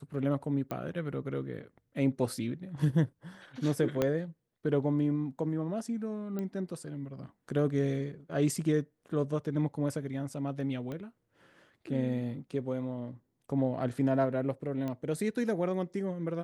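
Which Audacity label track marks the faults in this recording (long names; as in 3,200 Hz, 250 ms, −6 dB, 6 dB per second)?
0.710000	0.710000	click −23 dBFS
4.020000	4.020000	click −15 dBFS
6.390000	6.390000	click −24 dBFS
10.920000	10.920000	click −27 dBFS
14.880000	14.880000	click −24 dBFS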